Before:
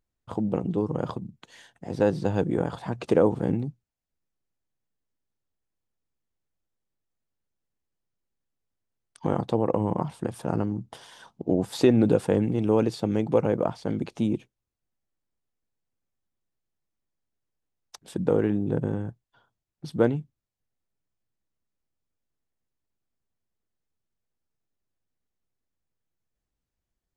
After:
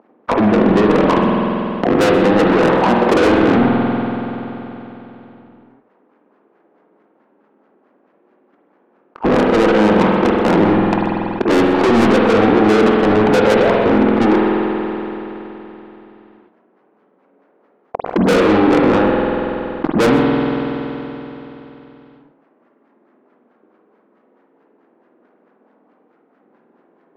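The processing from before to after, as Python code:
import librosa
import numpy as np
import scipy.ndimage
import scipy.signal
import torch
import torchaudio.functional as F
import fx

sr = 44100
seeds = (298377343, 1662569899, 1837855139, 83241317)

p1 = scipy.signal.medfilt(x, 25)
p2 = scipy.signal.sosfilt(scipy.signal.butter(6, 220.0, 'highpass', fs=sr, output='sos'), p1)
p3 = fx.leveller(p2, sr, passes=5)
p4 = fx.level_steps(p3, sr, step_db=13)
p5 = p3 + (p4 * librosa.db_to_amplitude(1.0))
p6 = fx.filter_lfo_lowpass(p5, sr, shape='sine', hz=4.6, low_hz=400.0, high_hz=1700.0, q=1.6)
p7 = 10.0 ** (-18.0 / 20.0) * np.tanh(p6 / 10.0 ** (-18.0 / 20.0))
p8 = p7 + fx.echo_single(p7, sr, ms=127, db=-18.0, dry=0)
p9 = fx.rev_spring(p8, sr, rt60_s=1.8, pass_ms=(47,), chirp_ms=35, drr_db=0.5)
p10 = fx.env_flatten(p9, sr, amount_pct=50)
y = p10 * librosa.db_to_amplitude(3.5)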